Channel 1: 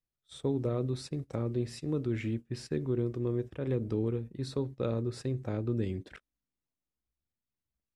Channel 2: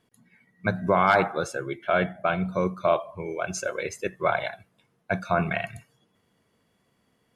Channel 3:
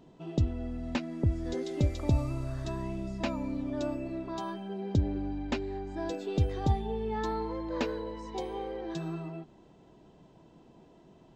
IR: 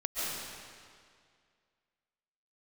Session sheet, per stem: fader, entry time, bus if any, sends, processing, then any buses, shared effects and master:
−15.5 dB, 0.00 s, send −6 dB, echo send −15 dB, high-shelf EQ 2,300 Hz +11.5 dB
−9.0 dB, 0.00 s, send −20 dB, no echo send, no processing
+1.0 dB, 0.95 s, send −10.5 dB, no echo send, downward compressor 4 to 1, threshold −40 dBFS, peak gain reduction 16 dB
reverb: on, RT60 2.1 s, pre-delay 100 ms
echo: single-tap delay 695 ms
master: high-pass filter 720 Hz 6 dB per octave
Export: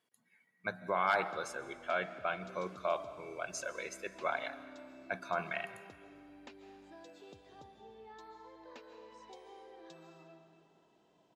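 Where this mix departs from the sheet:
stem 1: muted
stem 3 +1.0 dB → −8.5 dB

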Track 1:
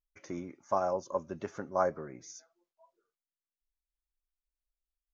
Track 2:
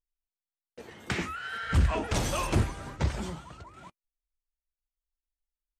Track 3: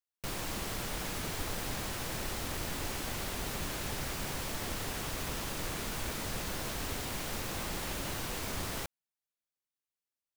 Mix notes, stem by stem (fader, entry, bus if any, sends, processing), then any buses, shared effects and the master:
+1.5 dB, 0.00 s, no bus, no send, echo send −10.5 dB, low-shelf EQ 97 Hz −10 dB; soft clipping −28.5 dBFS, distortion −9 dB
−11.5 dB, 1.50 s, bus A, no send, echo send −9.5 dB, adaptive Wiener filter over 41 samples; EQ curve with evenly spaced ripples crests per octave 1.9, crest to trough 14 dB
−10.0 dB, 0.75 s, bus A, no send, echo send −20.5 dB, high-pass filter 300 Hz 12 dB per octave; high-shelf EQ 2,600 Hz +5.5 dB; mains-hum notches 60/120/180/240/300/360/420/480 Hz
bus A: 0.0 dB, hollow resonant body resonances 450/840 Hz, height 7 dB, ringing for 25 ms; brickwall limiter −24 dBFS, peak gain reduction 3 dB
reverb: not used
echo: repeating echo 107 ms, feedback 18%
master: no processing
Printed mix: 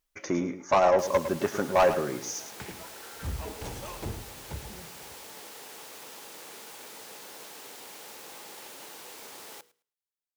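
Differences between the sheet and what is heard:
stem 1 +1.5 dB → +13.0 dB
stem 2: missing EQ curve with evenly spaced ripples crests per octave 1.9, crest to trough 14 dB

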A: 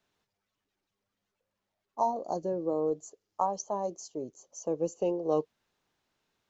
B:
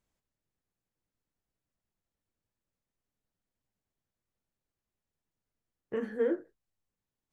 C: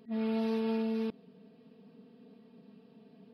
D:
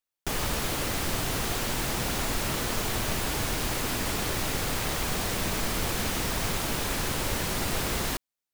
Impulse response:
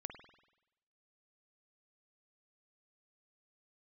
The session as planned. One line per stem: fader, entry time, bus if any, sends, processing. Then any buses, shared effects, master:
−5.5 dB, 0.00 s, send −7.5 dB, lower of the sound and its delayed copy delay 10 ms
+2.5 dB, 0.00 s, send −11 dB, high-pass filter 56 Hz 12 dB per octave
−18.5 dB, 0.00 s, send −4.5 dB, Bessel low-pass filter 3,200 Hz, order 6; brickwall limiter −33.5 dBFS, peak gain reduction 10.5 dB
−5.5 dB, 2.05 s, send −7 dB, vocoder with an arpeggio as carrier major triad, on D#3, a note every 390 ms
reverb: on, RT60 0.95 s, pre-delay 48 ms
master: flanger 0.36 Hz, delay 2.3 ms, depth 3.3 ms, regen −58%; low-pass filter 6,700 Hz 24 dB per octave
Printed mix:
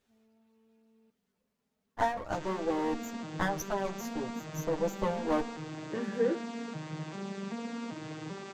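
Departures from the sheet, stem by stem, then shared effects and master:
stem A −5.5 dB → +2.5 dB
stem C −18.5 dB → −25.5 dB
master: missing low-pass filter 6,700 Hz 24 dB per octave

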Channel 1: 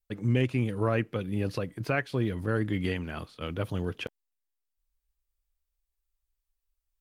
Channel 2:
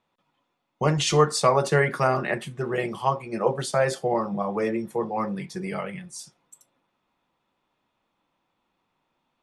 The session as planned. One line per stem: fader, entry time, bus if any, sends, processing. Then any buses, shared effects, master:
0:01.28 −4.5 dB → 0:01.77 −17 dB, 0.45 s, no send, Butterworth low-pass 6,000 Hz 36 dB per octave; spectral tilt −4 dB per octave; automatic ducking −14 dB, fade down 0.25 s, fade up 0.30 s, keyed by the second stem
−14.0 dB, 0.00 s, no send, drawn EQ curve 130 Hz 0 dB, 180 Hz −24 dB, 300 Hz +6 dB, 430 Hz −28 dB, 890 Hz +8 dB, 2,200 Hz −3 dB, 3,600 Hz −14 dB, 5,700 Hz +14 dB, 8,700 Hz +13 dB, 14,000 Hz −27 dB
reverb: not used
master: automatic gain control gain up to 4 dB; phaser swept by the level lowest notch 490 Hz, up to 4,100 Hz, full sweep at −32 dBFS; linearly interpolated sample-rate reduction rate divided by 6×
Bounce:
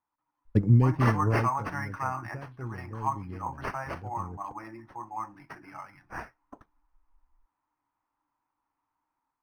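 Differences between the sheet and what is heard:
stem 1 −4.5 dB → +2.5 dB
master: missing phaser swept by the level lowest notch 490 Hz, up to 4,100 Hz, full sweep at −32 dBFS

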